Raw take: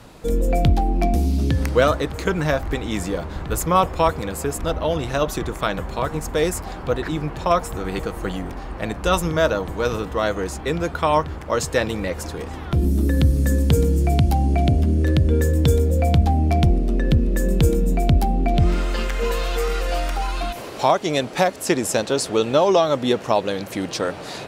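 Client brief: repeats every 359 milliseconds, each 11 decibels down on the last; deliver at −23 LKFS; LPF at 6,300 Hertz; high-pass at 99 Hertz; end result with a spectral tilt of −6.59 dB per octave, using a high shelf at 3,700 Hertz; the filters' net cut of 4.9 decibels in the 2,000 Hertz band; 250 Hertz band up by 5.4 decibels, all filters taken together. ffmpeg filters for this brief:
ffmpeg -i in.wav -af "highpass=99,lowpass=6300,equalizer=frequency=250:width_type=o:gain=7.5,equalizer=frequency=2000:width_type=o:gain=-5.5,highshelf=frequency=3700:gain=-5,aecho=1:1:359|718|1077:0.282|0.0789|0.0221,volume=-2.5dB" out.wav

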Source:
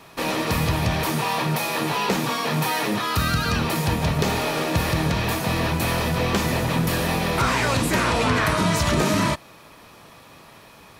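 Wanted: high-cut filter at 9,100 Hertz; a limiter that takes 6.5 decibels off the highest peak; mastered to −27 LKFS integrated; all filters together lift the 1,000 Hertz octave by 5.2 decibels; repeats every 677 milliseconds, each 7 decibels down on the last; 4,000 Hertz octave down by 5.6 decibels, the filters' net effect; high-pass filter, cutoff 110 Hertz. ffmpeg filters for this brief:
ffmpeg -i in.wav -af "highpass=110,lowpass=9100,equalizer=frequency=1000:width_type=o:gain=6.5,equalizer=frequency=4000:width_type=o:gain=-7.5,alimiter=limit=-13.5dB:level=0:latency=1,aecho=1:1:677|1354|2031|2708|3385:0.447|0.201|0.0905|0.0407|0.0183,volume=-5dB" out.wav

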